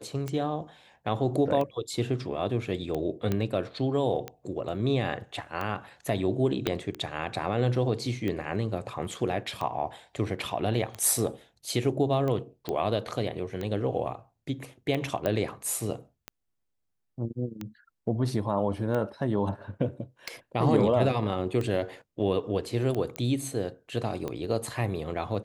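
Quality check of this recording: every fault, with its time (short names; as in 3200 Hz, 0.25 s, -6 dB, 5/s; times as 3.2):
tick 45 rpm -20 dBFS
3.32 pop -15 dBFS
6.67 pop -12 dBFS
12.69 pop -18 dBFS
15.26 pop -15 dBFS
23.16 pop -17 dBFS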